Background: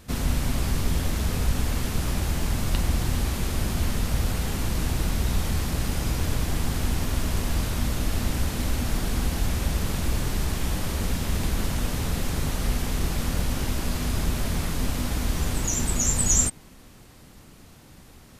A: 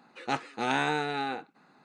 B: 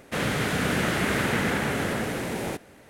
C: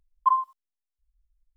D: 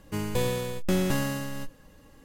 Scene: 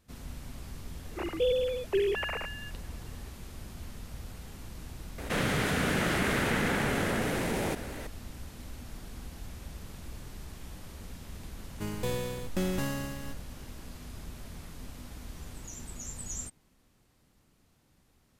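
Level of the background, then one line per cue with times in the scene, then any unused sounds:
background -18 dB
1.05 add D -3 dB + sine-wave speech
5.18 add B -4.5 dB + fast leveller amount 50%
11.68 add D -5.5 dB
not used: A, C

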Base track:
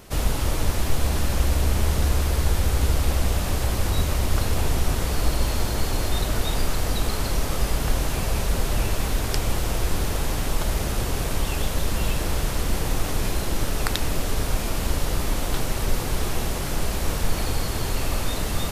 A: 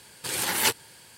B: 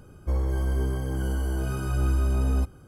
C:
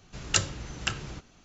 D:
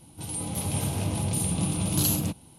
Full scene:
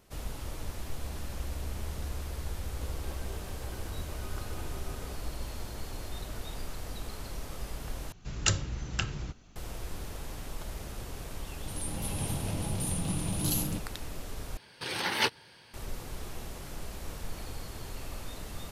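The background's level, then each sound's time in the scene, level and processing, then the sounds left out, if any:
base track -15.5 dB
2.52 add B -12 dB + HPF 360 Hz 24 dB/oct
8.12 replace with C -3 dB + low shelf 140 Hz +9.5 dB
11.47 add D -6 dB
14.57 replace with A -2 dB + polynomial smoothing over 15 samples

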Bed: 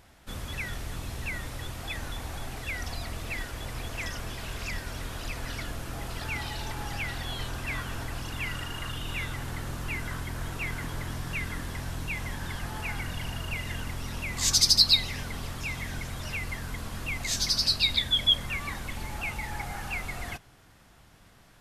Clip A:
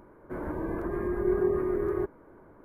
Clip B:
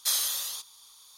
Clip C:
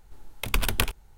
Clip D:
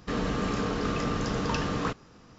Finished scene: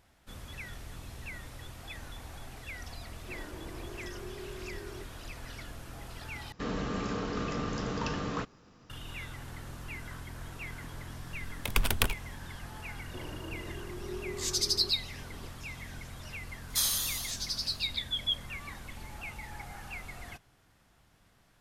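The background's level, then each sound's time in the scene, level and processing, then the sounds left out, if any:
bed -8.5 dB
2.98 add A -9 dB + compressor, threshold -33 dBFS
6.52 replace with D -5 dB
11.22 add C -3 dB
12.84 add A -14.5 dB + recorder AGC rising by 31 dB/s
16.7 add B -2 dB

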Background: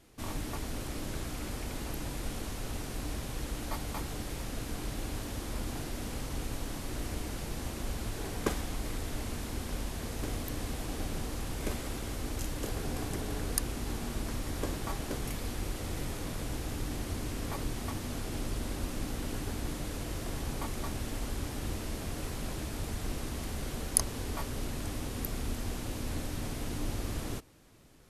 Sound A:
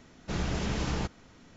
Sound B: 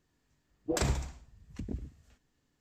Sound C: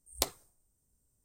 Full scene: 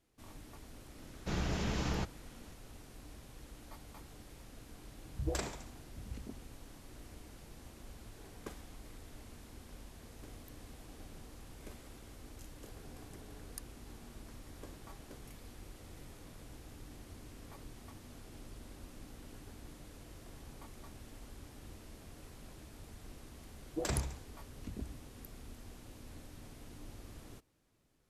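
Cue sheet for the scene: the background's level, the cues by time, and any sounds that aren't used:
background -15.5 dB
0.98 add A -4 dB
4.37 add B -6 dB + bands offset in time lows, highs 0.21 s, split 170 Hz
23.08 add B -5.5 dB
not used: C

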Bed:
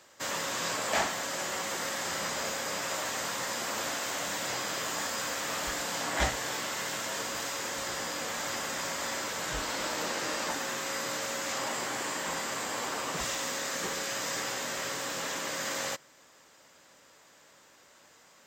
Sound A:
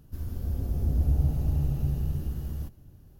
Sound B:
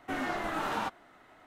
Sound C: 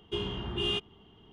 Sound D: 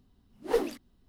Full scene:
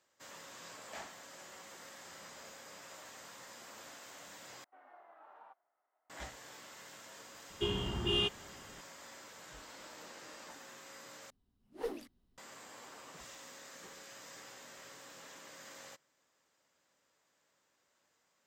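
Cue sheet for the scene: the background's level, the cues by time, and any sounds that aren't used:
bed -18.5 dB
4.64 replace with B -14 dB + ladder band-pass 860 Hz, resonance 35%
7.49 add C -1 dB
11.3 replace with D -12 dB + vocal rider within 5 dB
not used: A

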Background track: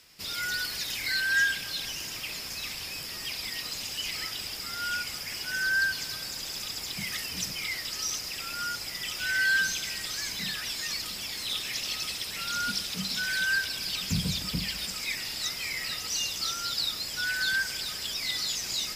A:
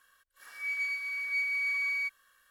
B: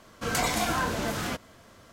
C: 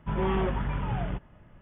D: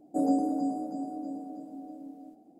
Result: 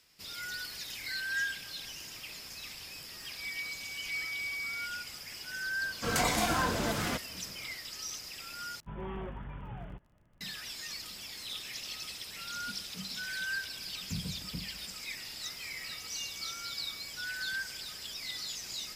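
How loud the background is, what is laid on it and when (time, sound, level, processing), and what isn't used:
background track -8.5 dB
2.78 add A -5.5 dB + per-bin expansion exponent 1.5
5.81 add B -2 dB
8.8 replace with C -13 dB + crackle 31/s -44 dBFS
15.04 add A -6 dB + bell 2500 Hz -14.5 dB 1.5 oct
not used: D

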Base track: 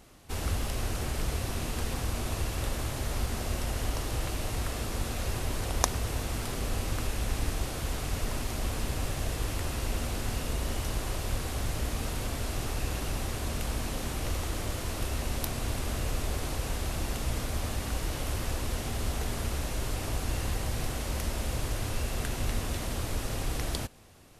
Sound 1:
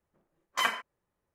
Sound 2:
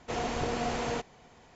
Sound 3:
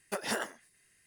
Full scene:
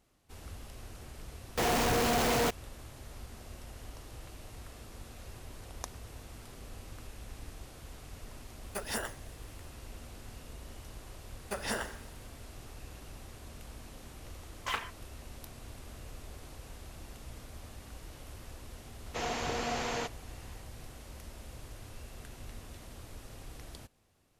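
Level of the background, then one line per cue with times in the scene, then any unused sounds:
base track -15.5 dB
1.49 add 2 -1.5 dB + companded quantiser 2-bit
8.63 add 3 -4 dB + high shelf 9400 Hz +9.5 dB
11.39 add 3 -2 dB + Schroeder reverb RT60 0.9 s, combs from 30 ms, DRR 9.5 dB
14.09 add 1 -7 dB + Doppler distortion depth 0.42 ms
19.06 add 2 -2 dB + tilt shelf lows -3.5 dB, about 860 Hz

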